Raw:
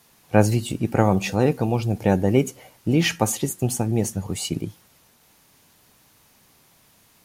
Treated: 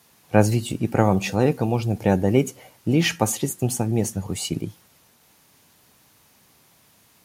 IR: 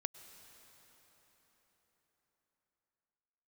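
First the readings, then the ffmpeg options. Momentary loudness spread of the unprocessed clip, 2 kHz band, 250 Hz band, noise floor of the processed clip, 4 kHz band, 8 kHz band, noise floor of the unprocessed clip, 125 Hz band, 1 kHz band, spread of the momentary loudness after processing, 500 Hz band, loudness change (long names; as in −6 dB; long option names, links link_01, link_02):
9 LU, 0.0 dB, 0.0 dB, −58 dBFS, 0.0 dB, 0.0 dB, −58 dBFS, 0.0 dB, 0.0 dB, 9 LU, 0.0 dB, 0.0 dB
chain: -af "highpass=54"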